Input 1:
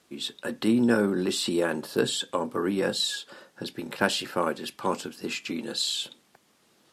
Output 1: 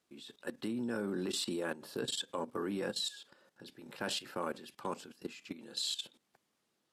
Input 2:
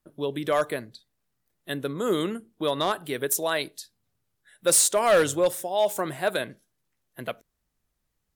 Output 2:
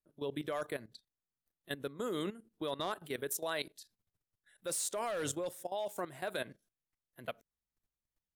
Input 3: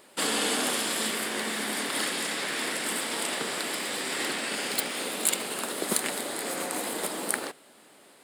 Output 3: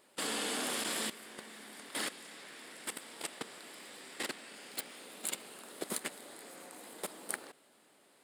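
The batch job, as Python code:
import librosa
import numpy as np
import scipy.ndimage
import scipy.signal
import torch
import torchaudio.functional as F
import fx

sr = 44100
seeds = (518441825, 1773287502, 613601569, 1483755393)

y = fx.level_steps(x, sr, step_db=15)
y = y * 10.0 ** (-6.0 / 20.0)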